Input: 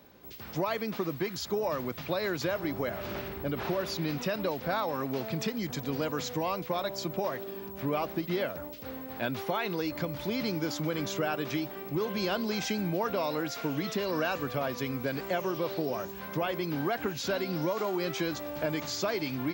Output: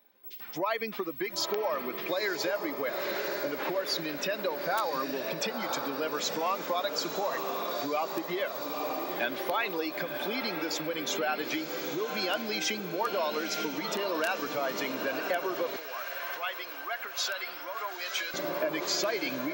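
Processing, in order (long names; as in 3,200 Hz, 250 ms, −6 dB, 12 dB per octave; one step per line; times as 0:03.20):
spectral dynamics exaggerated over time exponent 1.5
feedback delay with all-pass diffusion 944 ms, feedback 58%, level −8 dB
wrap-around overflow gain 21 dB
downward compressor, threshold −35 dBFS, peak gain reduction 8 dB
high-pass filter 220 Hz 12 dB per octave, from 0:15.76 980 Hz, from 0:18.34 160 Hz
mid-hump overdrive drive 18 dB, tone 5,700 Hz, clips at −9 dBFS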